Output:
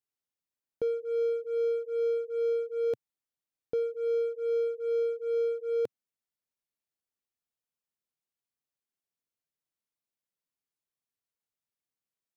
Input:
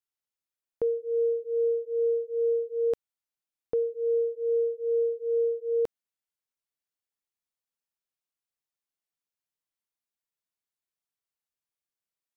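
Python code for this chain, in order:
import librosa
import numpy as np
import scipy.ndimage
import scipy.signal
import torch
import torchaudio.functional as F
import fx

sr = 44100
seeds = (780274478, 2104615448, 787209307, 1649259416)

p1 = fx.graphic_eq_10(x, sr, hz=(125, 250, 500), db=(6, 4, 3))
p2 = np.clip(10.0 ** (32.5 / 20.0) * p1, -1.0, 1.0) / 10.0 ** (32.5 / 20.0)
p3 = p1 + (p2 * librosa.db_to_amplitude(-4.0))
y = p3 * librosa.db_to_amplitude(-8.0)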